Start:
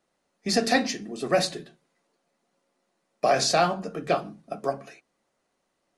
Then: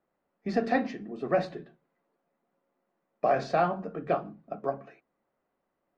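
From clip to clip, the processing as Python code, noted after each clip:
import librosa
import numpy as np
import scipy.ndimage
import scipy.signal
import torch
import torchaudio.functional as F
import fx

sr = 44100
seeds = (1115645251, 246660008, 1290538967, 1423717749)

y = scipy.signal.sosfilt(scipy.signal.butter(2, 1700.0, 'lowpass', fs=sr, output='sos'), x)
y = F.gain(torch.from_numpy(y), -3.0).numpy()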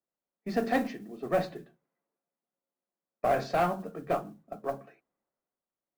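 y = fx.tube_stage(x, sr, drive_db=19.0, bias=0.3)
y = fx.mod_noise(y, sr, seeds[0], snr_db=27)
y = fx.band_widen(y, sr, depth_pct=40)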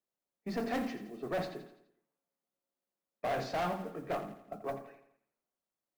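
y = 10.0 ** (-28.0 / 20.0) * np.tanh(x / 10.0 ** (-28.0 / 20.0))
y = fx.echo_feedback(y, sr, ms=84, feedback_pct=48, wet_db=-11.5)
y = F.gain(torch.from_numpy(y), -1.5).numpy()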